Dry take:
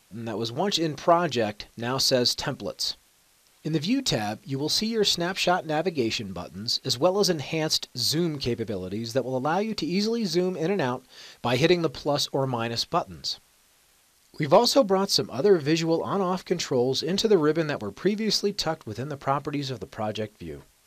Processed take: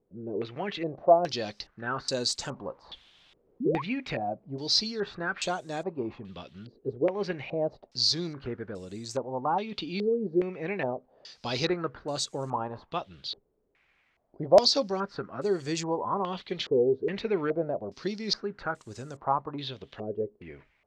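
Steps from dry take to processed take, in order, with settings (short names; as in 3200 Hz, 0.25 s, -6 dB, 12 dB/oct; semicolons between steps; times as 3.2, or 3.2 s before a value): 2.48–3.99 G.711 law mismatch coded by mu; 3.6–3.82 painted sound rise 210–1200 Hz -26 dBFS; stepped low-pass 2.4 Hz 430–7700 Hz; gain -8.5 dB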